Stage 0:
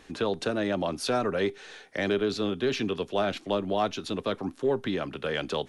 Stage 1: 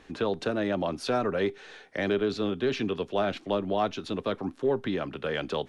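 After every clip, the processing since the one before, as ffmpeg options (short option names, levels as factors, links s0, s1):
-af "lowpass=f=3600:p=1"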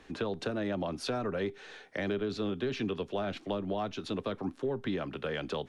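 -filter_complex "[0:a]acrossover=split=200[s0][s1];[s1]acompressor=threshold=0.0316:ratio=4[s2];[s0][s2]amix=inputs=2:normalize=0,volume=0.841"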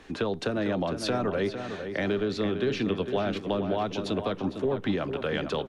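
-filter_complex "[0:a]asplit=2[s0][s1];[s1]adelay=454,lowpass=f=2800:p=1,volume=0.398,asplit=2[s2][s3];[s3]adelay=454,lowpass=f=2800:p=1,volume=0.45,asplit=2[s4][s5];[s5]adelay=454,lowpass=f=2800:p=1,volume=0.45,asplit=2[s6][s7];[s7]adelay=454,lowpass=f=2800:p=1,volume=0.45,asplit=2[s8][s9];[s9]adelay=454,lowpass=f=2800:p=1,volume=0.45[s10];[s0][s2][s4][s6][s8][s10]amix=inputs=6:normalize=0,volume=1.78"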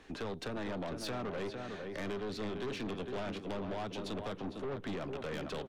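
-af "aeval=exprs='(tanh(31.6*val(0)+0.4)-tanh(0.4))/31.6':c=same,volume=0.562"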